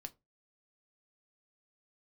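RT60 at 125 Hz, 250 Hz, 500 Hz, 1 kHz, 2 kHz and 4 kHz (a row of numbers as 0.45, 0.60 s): 0.35, 0.25, 0.25, 0.20, 0.15, 0.15 s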